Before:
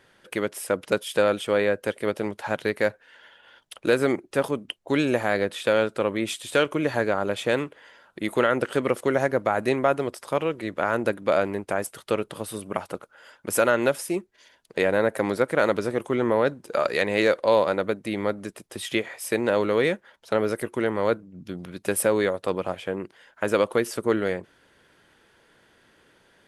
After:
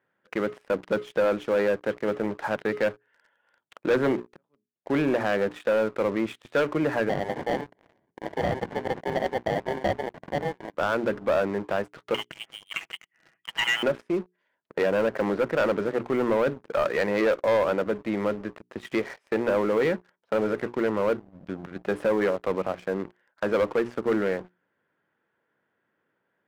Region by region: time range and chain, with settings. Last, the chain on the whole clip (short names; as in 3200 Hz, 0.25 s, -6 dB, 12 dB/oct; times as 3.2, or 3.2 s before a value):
3.89–4.76 auto swell 0.743 s + three-band expander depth 100%
7.09–10.74 HPF 590 Hz + sample-rate reducer 1300 Hz
12.14–13.83 comb 6.2 ms, depth 44% + inverted band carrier 3400 Hz
whole clip: Chebyshev band-pass 140–1700 Hz, order 2; notches 60/120/180/240/300/360/420 Hz; sample leveller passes 3; gain -8.5 dB